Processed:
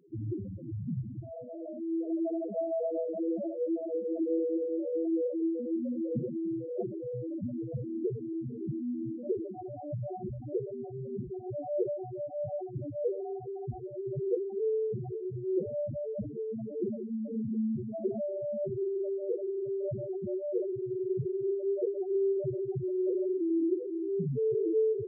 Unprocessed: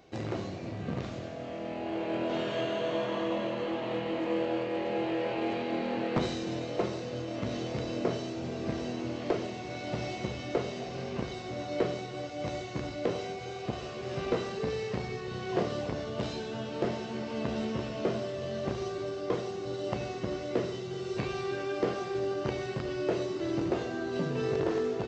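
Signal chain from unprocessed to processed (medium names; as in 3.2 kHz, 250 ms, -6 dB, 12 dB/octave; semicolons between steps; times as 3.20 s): sample-rate reducer 3 kHz, jitter 0%; loudest bins only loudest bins 2; trim +6 dB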